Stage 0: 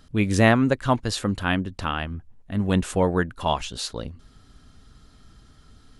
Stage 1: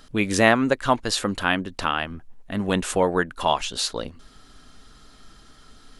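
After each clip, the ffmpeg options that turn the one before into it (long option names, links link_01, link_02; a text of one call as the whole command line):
ffmpeg -i in.wav -filter_complex "[0:a]equalizer=frequency=85:width_type=o:width=2.5:gain=-13.5,asplit=2[link_01][link_02];[link_02]acompressor=threshold=-31dB:ratio=6,volume=-1.5dB[link_03];[link_01][link_03]amix=inputs=2:normalize=0,volume=1.5dB" out.wav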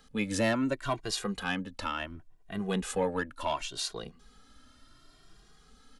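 ffmpeg -i in.wav -filter_complex "[0:a]acrossover=split=360|3000[link_01][link_02][link_03];[link_02]asoftclip=type=tanh:threshold=-15dB[link_04];[link_01][link_04][link_03]amix=inputs=3:normalize=0,asplit=2[link_05][link_06];[link_06]adelay=2,afreqshift=0.7[link_07];[link_05][link_07]amix=inputs=2:normalize=1,volume=-5.5dB" out.wav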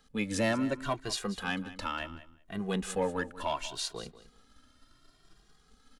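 ffmpeg -i in.wav -filter_complex "[0:a]asplit=2[link_01][link_02];[link_02]aeval=exprs='sgn(val(0))*max(abs(val(0))-0.00188,0)':channel_layout=same,volume=-3.5dB[link_03];[link_01][link_03]amix=inputs=2:normalize=0,aecho=1:1:190|380:0.168|0.0269,volume=-5.5dB" out.wav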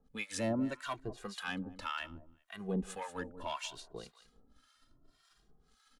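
ffmpeg -i in.wav -filter_complex "[0:a]acrossover=split=830[link_01][link_02];[link_01]aeval=exprs='val(0)*(1-1/2+1/2*cos(2*PI*1.8*n/s))':channel_layout=same[link_03];[link_02]aeval=exprs='val(0)*(1-1/2-1/2*cos(2*PI*1.8*n/s))':channel_layout=same[link_04];[link_03][link_04]amix=inputs=2:normalize=0,volume=-1dB" out.wav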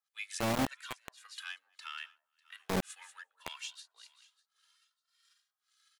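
ffmpeg -i in.wav -filter_complex "[0:a]aecho=1:1:597|1194:0.0668|0.0154,acrossover=split=1400[link_01][link_02];[link_01]acrusher=bits=4:mix=0:aa=0.000001[link_03];[link_03][link_02]amix=inputs=2:normalize=0" out.wav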